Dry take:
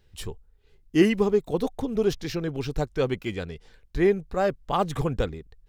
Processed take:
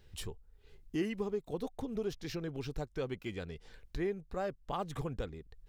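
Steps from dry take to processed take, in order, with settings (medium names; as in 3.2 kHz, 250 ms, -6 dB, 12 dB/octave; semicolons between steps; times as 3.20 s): compression 2:1, threshold -46 dBFS, peak gain reduction 17.5 dB; trim +1 dB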